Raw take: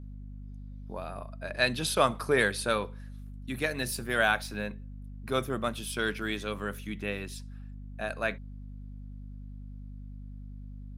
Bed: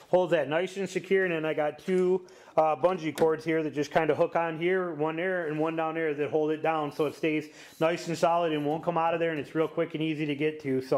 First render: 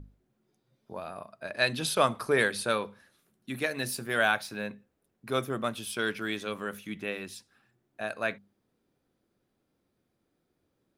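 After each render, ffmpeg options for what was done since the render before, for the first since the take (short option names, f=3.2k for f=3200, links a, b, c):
-af "bandreject=f=50:t=h:w=6,bandreject=f=100:t=h:w=6,bandreject=f=150:t=h:w=6,bandreject=f=200:t=h:w=6,bandreject=f=250:t=h:w=6"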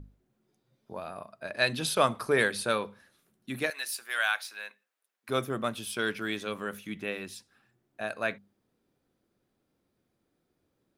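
-filter_complex "[0:a]asettb=1/sr,asplit=3[a][b][c];[a]atrim=end=3.704[d];[b]atrim=start=3.7:end=5.29,asetpts=PTS-STARTPTS,afade=t=in:d=0.004:c=qsin,afade=t=out:st=1.586:d=0.004:c=qsin,highpass=1.2k[e];[c]atrim=start=5.286[f];[d][e]acrossfade=d=0.004:c1=hsin:c2=qsin[g];[g][f]acrossfade=d=0.004:c1=qsin:c2=hsin"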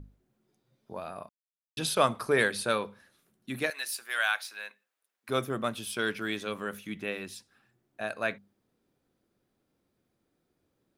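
-filter_complex "[0:a]asplit=3[a][b][c];[a]atrim=end=1.29,asetpts=PTS-STARTPTS,afade=t=out:st=1.286:d=0.004:c=hsin[d];[b]atrim=start=1.29:end=1.77,asetpts=PTS-STARTPTS,volume=0[e];[c]atrim=start=1.77,asetpts=PTS-STARTPTS,afade=t=in:d=0.004:c=hsin[f];[d][e][f]concat=n=3:v=0:a=1"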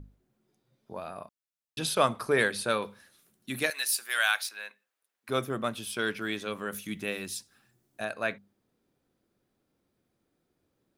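-filter_complex "[0:a]asettb=1/sr,asplit=3[a][b][c];[a]atrim=end=2.824[d];[b]atrim=start=2.82:end=4.49,asetpts=PTS-STARTPTS,afade=t=in:d=0.004:c=qsin,afade=t=out:st=1.666:d=0.004:c=qsin,highshelf=f=3.2k:g=8.5[e];[c]atrim=start=4.486[f];[d][e]acrossfade=d=0.004:c1=hsin:c2=qsin[g];[g][f]acrossfade=d=0.004:c1=qsin:c2=hsin,asettb=1/sr,asplit=3[h][i][j];[h]atrim=end=6.724[k];[i]atrim=start=6.72:end=8.05,asetpts=PTS-STARTPTS,afade=t=in:d=0.004:c=qsin,afade=t=out:st=1.326:d=0.004:c=qsin,bass=f=250:g=3,treble=f=4k:g=10[l];[j]atrim=start=8.046[m];[k][l]acrossfade=d=0.004:c1=hsin:c2=qsin[n];[n][m]acrossfade=d=0.004:c1=qsin:c2=hsin"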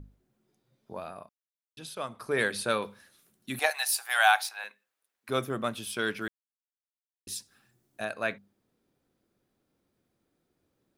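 -filter_complex "[0:a]asettb=1/sr,asplit=3[a][b][c];[a]atrim=end=3.594[d];[b]atrim=start=3.59:end=4.64,asetpts=PTS-STARTPTS,afade=t=in:d=0.004:c=qsin,afade=t=out:st=1.046:d=0.004:c=qsin,highpass=f=770:t=q:w=8.1[e];[c]atrim=start=4.636[f];[d][e]acrossfade=d=0.004:c1=hsin:c2=qsin[g];[g][f]acrossfade=d=0.004:c1=qsin:c2=hsin,asplit=5[h][i][j][k][l];[h]atrim=end=1.45,asetpts=PTS-STARTPTS,afade=t=out:st=1.01:d=0.44:silence=0.251189[m];[i]atrim=start=1.45:end=2.1,asetpts=PTS-STARTPTS,volume=-12dB[n];[j]atrim=start=2.1:end=6.28,asetpts=PTS-STARTPTS,afade=t=in:d=0.44:silence=0.251189,afade=t=out:st=4.176:d=0.004:c=hsin[o];[k]atrim=start=6.28:end=7.27,asetpts=PTS-STARTPTS,volume=0[p];[l]atrim=start=7.27,asetpts=PTS-STARTPTS,afade=t=in:d=0.004:c=hsin[q];[m][n][o][p][q]concat=n=5:v=0:a=1"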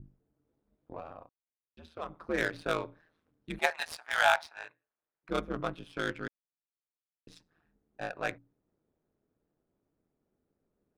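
-af "aeval=exprs='val(0)*sin(2*PI*81*n/s)':c=same,adynamicsmooth=sensitivity=4:basefreq=1.6k"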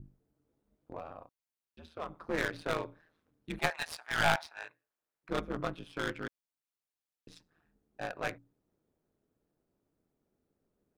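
-af "aeval=exprs='clip(val(0),-1,0.0251)':c=same"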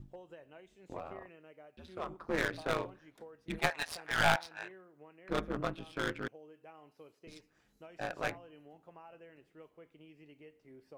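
-filter_complex "[1:a]volume=-27.5dB[a];[0:a][a]amix=inputs=2:normalize=0"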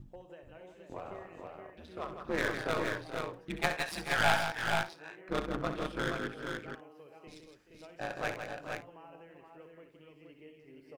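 -af "aecho=1:1:65|162|431|473|528:0.355|0.398|0.237|0.596|0.112"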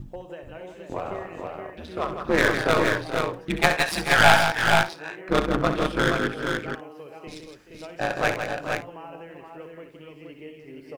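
-af "volume=12dB,alimiter=limit=-1dB:level=0:latency=1"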